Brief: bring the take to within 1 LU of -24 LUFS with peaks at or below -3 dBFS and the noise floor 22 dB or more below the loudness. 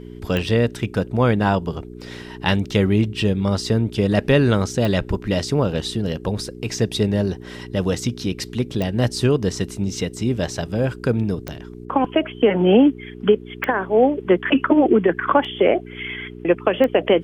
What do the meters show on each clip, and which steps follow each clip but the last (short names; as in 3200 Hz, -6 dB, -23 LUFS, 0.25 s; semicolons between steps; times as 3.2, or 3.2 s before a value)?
clicks 6; hum 60 Hz; harmonics up to 420 Hz; hum level -34 dBFS; loudness -20.5 LUFS; peak -3.0 dBFS; loudness target -24.0 LUFS
-> de-click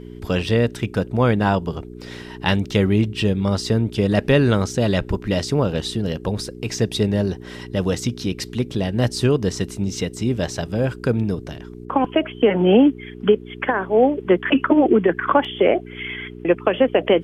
clicks 0; hum 60 Hz; harmonics up to 420 Hz; hum level -34 dBFS
-> de-hum 60 Hz, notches 7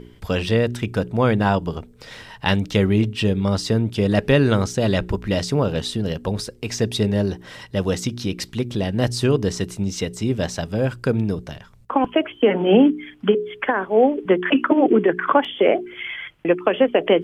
hum none; loudness -20.5 LUFS; peak -3.0 dBFS; loudness target -24.0 LUFS
-> gain -3.5 dB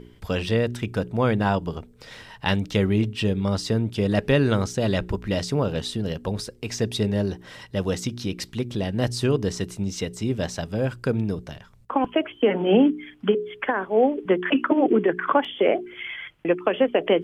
loudness -24.0 LUFS; peak -6.5 dBFS; noise floor -51 dBFS